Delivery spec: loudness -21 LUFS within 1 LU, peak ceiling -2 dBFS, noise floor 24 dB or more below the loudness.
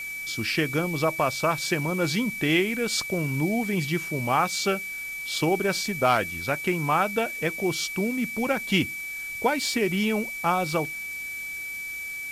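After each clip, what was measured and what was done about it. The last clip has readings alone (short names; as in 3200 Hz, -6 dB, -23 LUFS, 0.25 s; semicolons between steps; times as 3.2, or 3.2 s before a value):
steady tone 2300 Hz; tone level -32 dBFS; noise floor -35 dBFS; noise floor target -50 dBFS; loudness -26.0 LUFS; peak -8.5 dBFS; loudness target -21.0 LUFS
-> notch 2300 Hz, Q 30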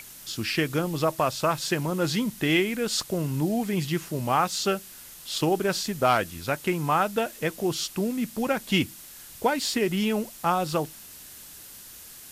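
steady tone none; noise floor -45 dBFS; noise floor target -51 dBFS
-> denoiser 6 dB, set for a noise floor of -45 dBFS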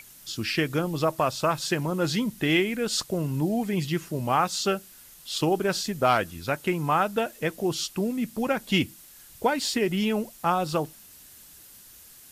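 noise floor -50 dBFS; noise floor target -51 dBFS
-> denoiser 6 dB, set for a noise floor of -50 dBFS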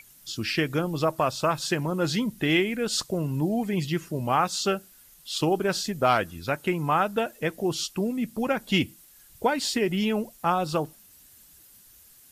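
noise floor -54 dBFS; loudness -26.5 LUFS; peak -9.5 dBFS; loudness target -21.0 LUFS
-> gain +5.5 dB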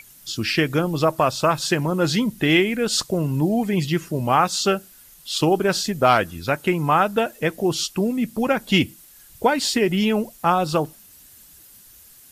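loudness -21.0 LUFS; peak -4.0 dBFS; noise floor -49 dBFS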